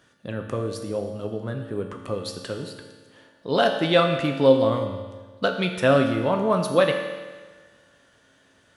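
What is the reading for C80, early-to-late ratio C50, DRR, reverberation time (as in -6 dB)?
7.5 dB, 6.0 dB, 3.5 dB, 1.4 s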